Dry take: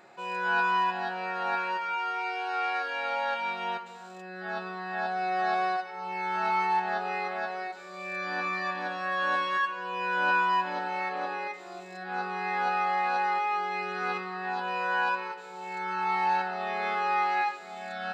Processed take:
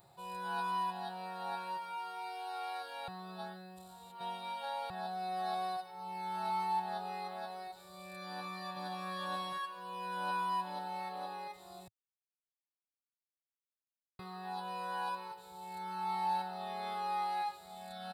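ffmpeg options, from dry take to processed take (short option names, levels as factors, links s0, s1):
-filter_complex "[0:a]asplit=2[s0][s1];[s1]afade=t=in:st=8.22:d=0.01,afade=t=out:st=8.98:d=0.01,aecho=0:1:540|1080|1620:0.630957|0.0946436|0.0141965[s2];[s0][s2]amix=inputs=2:normalize=0,asplit=5[s3][s4][s5][s6][s7];[s3]atrim=end=3.082[s8];[s4]atrim=start=3.078:end=4.902,asetpts=PTS-STARTPTS,areverse[s9];[s5]atrim=start=4.898:end=11.88,asetpts=PTS-STARTPTS,afade=t=out:st=6.978:d=0.004:c=hsin[s10];[s6]atrim=start=11.88:end=14.19,asetpts=PTS-STARTPTS,volume=0[s11];[s7]atrim=start=14.19,asetpts=PTS-STARTPTS,afade=t=in:d=0.004:c=hsin[s12];[s8][s9]acrossfade=d=0.004:c1=hsin:c2=hsin[s13];[s10][s11][s12]concat=n=3:v=0:a=1[s14];[s13][s14]acrossfade=d=0.004:c1=hsin:c2=hsin,firequalizer=gain_entry='entry(110,0);entry(240,-26);entry(430,-23);entry(890,-18);entry(1500,-29);entry(2500,-28);entry(3700,-13);entry(6500,-23);entry(9300,2)':delay=0.05:min_phase=1,volume=3.55"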